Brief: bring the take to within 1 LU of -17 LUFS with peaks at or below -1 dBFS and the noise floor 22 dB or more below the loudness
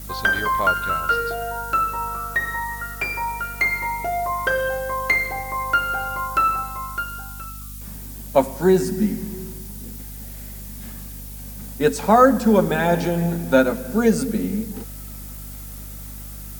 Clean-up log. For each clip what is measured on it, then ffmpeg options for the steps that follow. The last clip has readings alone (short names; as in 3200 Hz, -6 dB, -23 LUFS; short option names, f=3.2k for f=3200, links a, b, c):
hum 50 Hz; harmonics up to 250 Hz; hum level -34 dBFS; noise floor -35 dBFS; noise floor target -43 dBFS; loudness -21.0 LUFS; peak -1.5 dBFS; loudness target -17.0 LUFS
-> -af "bandreject=f=50:t=h:w=4,bandreject=f=100:t=h:w=4,bandreject=f=150:t=h:w=4,bandreject=f=200:t=h:w=4,bandreject=f=250:t=h:w=4"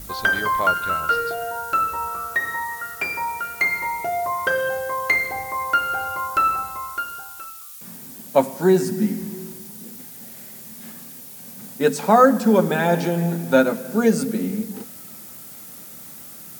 hum none; noise floor -40 dBFS; noise floor target -43 dBFS
-> -af "afftdn=nr=6:nf=-40"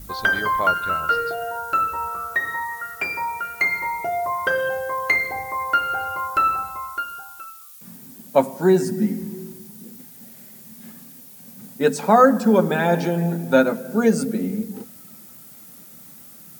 noise floor -44 dBFS; loudness -21.0 LUFS; peak -1.5 dBFS; loudness target -17.0 LUFS
-> -af "volume=4dB,alimiter=limit=-1dB:level=0:latency=1"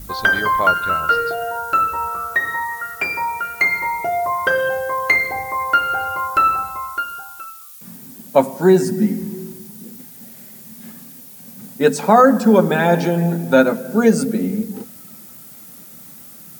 loudness -17.5 LUFS; peak -1.0 dBFS; noise floor -40 dBFS